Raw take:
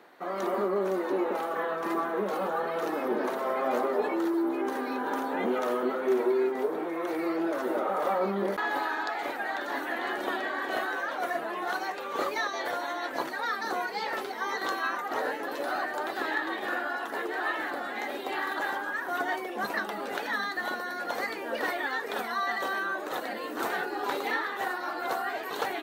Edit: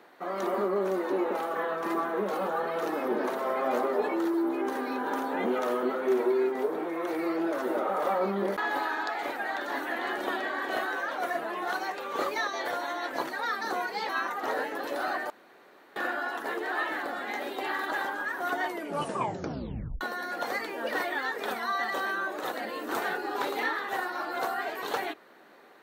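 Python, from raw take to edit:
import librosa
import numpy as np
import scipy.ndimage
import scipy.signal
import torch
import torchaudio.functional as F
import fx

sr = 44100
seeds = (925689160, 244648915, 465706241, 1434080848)

y = fx.edit(x, sr, fx.cut(start_s=14.09, length_s=0.68),
    fx.room_tone_fill(start_s=15.98, length_s=0.66),
    fx.tape_stop(start_s=19.33, length_s=1.36), tone=tone)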